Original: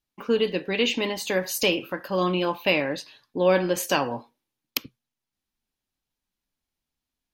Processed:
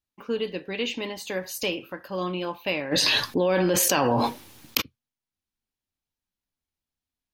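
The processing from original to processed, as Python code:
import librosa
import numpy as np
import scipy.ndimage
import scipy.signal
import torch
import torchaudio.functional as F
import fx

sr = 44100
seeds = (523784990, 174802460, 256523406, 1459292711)

y = fx.peak_eq(x, sr, hz=86.0, db=8.0, octaves=0.37)
y = fx.env_flatten(y, sr, amount_pct=100, at=(2.91, 4.8), fade=0.02)
y = y * librosa.db_to_amplitude(-5.5)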